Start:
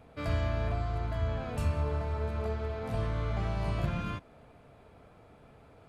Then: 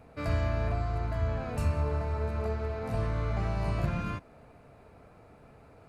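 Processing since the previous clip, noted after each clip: bell 3300 Hz -10 dB 0.22 oct; gain +1.5 dB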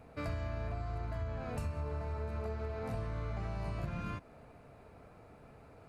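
compressor 4:1, threshold -34 dBFS, peak gain reduction 10 dB; gain -1.5 dB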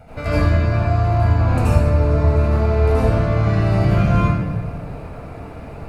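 reverb RT60 1.2 s, pre-delay 73 ms, DRR -10.5 dB; gain +7.5 dB

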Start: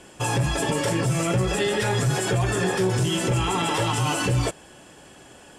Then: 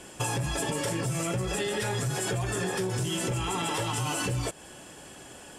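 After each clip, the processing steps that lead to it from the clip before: high shelf 7600 Hz +7.5 dB; compressor, threshold -27 dBFS, peak gain reduction 9 dB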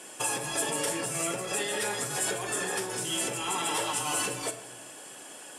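Bessel high-pass 390 Hz, order 2; bell 10000 Hz +6.5 dB 0.67 oct; shoebox room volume 270 m³, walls mixed, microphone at 0.52 m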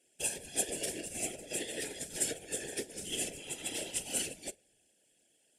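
Butterworth band-stop 1100 Hz, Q 0.84; whisperiser; upward expander 2.5:1, over -44 dBFS

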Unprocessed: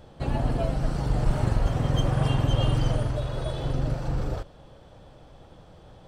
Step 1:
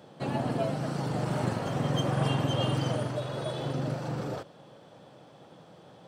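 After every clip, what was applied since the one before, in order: HPF 140 Hz 24 dB/oct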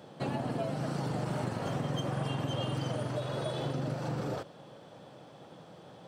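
compressor, threshold -31 dBFS, peak gain reduction 8.5 dB; gain +1 dB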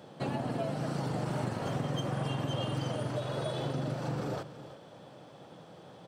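echo 0.325 s -14.5 dB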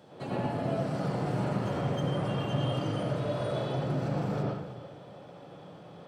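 reverb RT60 0.75 s, pre-delay 83 ms, DRR -5.5 dB; gain -4.5 dB

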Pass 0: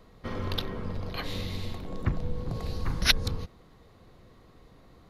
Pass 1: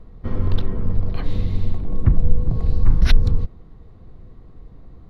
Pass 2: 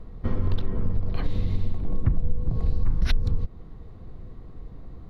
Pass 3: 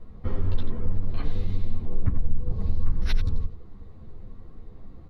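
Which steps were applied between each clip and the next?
tilt -3.5 dB/oct; notch 560 Hz, Q 17
compressor 3:1, threshold -21 dBFS, peak gain reduction 12 dB; gain +1.5 dB
on a send: echo 89 ms -10 dB; on the sum: ensemble effect

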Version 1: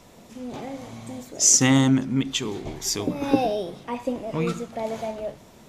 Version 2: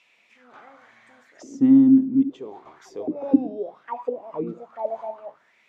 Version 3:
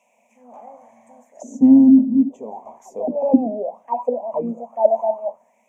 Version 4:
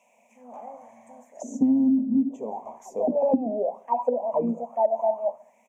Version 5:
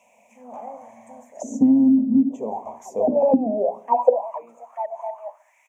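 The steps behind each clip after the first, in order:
auto-wah 270–2700 Hz, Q 6, down, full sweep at -20 dBFS; gain +6.5 dB
EQ curve 100 Hz 0 dB, 150 Hz -6 dB, 230 Hz +14 dB, 330 Hz -9 dB, 600 Hz +15 dB, 980 Hz +8 dB, 1400 Hz -21 dB, 2400 Hz -5 dB, 4400 Hz -24 dB, 6400 Hz +8 dB; gain -1 dB
feedback echo 69 ms, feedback 48%, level -22.5 dB; compressor 10:1, threshold -18 dBFS, peak gain reduction 12 dB
notches 60/120/180/240/300/360/420 Hz; high-pass sweep 77 Hz -> 1500 Hz, 3.65–4.3; gain +4.5 dB

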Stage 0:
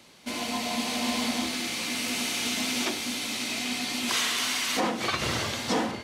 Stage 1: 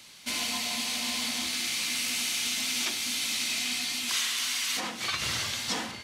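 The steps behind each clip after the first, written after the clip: vocal rider within 5 dB 0.5 s; passive tone stack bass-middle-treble 5-5-5; gain +8 dB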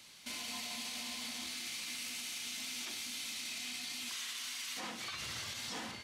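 limiter -27 dBFS, peak gain reduction 9 dB; gain -6 dB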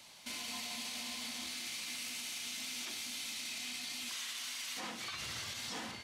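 band noise 540–1100 Hz -69 dBFS

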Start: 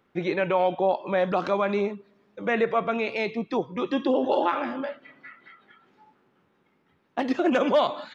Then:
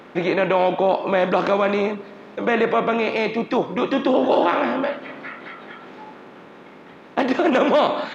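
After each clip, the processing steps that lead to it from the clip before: per-bin compression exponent 0.6; gain +2 dB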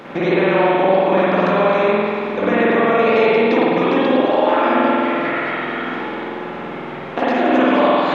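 compressor 6:1, threshold -26 dBFS, peak gain reduction 13 dB; spring tank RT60 2.4 s, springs 47 ms, chirp 70 ms, DRR -8.5 dB; gain +5.5 dB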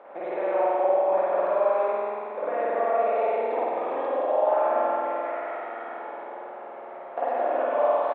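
ladder band-pass 740 Hz, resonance 50%; echo 0.174 s -6.5 dB

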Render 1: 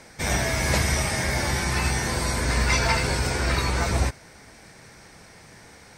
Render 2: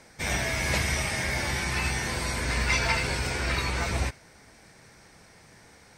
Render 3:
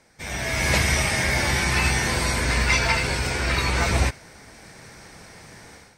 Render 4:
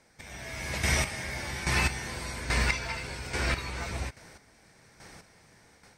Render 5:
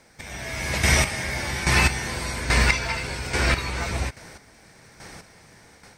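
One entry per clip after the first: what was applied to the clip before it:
dynamic EQ 2600 Hz, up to +6 dB, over -41 dBFS, Q 1.2; gain -5.5 dB
AGC gain up to 14.5 dB; gain -5.5 dB
chopper 1.2 Hz, depth 65%, duty 25%; gain -4.5 dB
crackle 150/s -62 dBFS; gain +7.5 dB

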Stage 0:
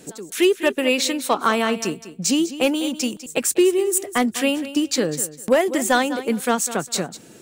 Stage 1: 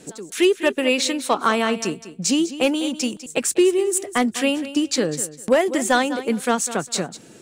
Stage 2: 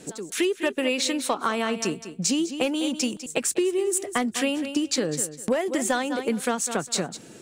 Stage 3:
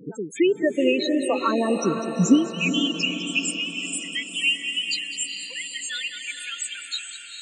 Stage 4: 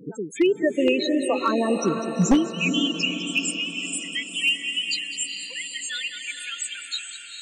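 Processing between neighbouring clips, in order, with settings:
LPF 11000 Hz 12 dB/oct
compressor 5:1, threshold -21 dBFS, peak gain reduction 9 dB
high-pass sweep 72 Hz -> 2700 Hz, 2.1–2.69; loudest bins only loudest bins 8; diffused feedback echo 0.454 s, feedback 53%, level -7 dB; gain +4.5 dB
one-sided fold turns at -12 dBFS

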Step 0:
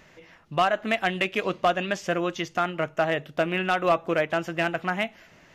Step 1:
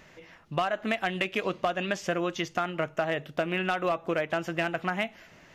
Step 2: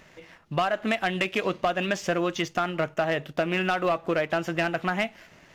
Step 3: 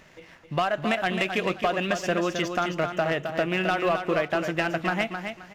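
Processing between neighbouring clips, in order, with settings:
compressor, threshold -24 dBFS, peak gain reduction 7.5 dB
sample leveller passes 1
feedback echo 0.264 s, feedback 24%, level -7 dB

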